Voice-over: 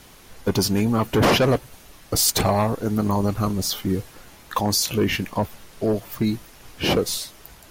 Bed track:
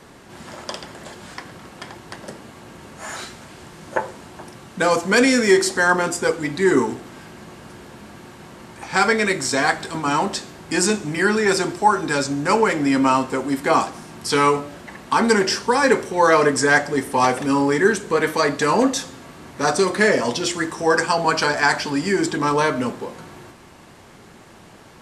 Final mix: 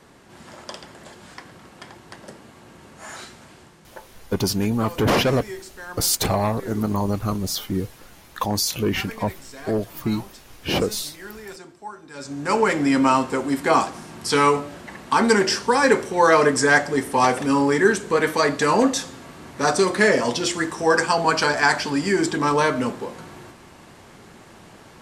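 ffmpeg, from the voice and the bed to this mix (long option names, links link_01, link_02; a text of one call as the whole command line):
ffmpeg -i stem1.wav -i stem2.wav -filter_complex "[0:a]adelay=3850,volume=-1.5dB[link_01];[1:a]volume=14.5dB,afade=type=out:start_time=3.5:duration=0.5:silence=0.177828,afade=type=in:start_time=12.13:duration=0.57:silence=0.1[link_02];[link_01][link_02]amix=inputs=2:normalize=0" out.wav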